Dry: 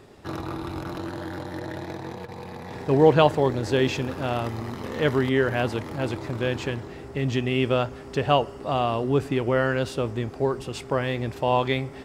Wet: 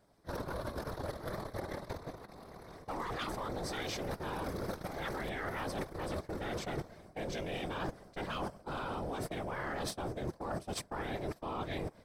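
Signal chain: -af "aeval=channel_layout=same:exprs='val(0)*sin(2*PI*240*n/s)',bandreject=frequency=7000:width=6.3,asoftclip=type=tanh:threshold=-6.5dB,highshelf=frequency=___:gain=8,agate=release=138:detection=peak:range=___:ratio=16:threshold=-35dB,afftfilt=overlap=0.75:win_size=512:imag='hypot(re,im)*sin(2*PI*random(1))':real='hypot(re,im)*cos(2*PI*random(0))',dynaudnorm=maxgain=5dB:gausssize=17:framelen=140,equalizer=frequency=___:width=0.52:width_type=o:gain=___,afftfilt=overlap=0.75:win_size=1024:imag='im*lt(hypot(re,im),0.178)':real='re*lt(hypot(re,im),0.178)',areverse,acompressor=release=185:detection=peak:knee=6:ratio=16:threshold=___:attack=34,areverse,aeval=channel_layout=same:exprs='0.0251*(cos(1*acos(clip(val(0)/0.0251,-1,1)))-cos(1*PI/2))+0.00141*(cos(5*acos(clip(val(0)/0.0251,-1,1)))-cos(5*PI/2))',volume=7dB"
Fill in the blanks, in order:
4500, -19dB, 2800, -9.5, -46dB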